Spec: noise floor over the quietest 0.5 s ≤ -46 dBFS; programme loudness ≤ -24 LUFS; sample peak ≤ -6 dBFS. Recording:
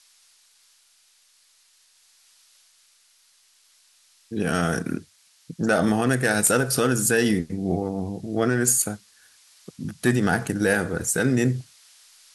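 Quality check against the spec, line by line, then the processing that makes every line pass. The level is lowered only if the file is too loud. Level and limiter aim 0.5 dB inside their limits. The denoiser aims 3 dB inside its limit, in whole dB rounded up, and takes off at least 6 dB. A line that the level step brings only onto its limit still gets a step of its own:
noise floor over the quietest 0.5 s -60 dBFS: pass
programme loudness -23.0 LUFS: fail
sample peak -5.5 dBFS: fail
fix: trim -1.5 dB

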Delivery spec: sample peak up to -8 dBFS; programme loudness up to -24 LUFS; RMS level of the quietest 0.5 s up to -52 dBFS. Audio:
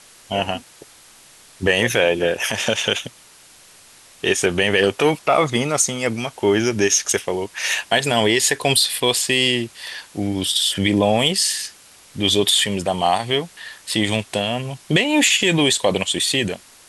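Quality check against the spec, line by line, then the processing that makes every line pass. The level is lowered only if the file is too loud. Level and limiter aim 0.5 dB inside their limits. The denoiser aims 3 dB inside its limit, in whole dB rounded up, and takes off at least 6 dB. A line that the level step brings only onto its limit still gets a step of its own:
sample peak -4.5 dBFS: fail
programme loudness -18.5 LUFS: fail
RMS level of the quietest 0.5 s -48 dBFS: fail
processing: trim -6 dB

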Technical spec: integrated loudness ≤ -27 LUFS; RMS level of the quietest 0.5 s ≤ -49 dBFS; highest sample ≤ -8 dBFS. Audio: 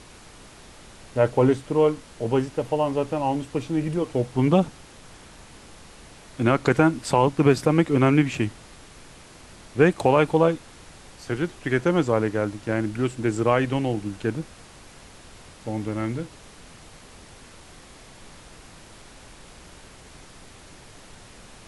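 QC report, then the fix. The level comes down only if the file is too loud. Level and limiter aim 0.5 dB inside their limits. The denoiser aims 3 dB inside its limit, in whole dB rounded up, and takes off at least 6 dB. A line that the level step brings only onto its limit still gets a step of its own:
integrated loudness -23.0 LUFS: fail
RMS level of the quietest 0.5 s -47 dBFS: fail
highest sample -4.5 dBFS: fail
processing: trim -4.5 dB

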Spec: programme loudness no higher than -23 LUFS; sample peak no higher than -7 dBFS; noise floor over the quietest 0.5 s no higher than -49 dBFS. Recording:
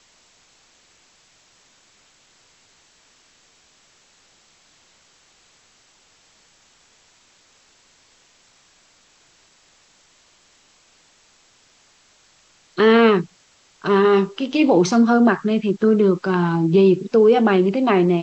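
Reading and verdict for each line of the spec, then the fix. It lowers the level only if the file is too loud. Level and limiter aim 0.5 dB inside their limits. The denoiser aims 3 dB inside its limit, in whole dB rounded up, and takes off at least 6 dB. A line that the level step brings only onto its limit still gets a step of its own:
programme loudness -16.5 LUFS: fail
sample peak -6.0 dBFS: fail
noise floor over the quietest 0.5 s -57 dBFS: pass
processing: trim -7 dB

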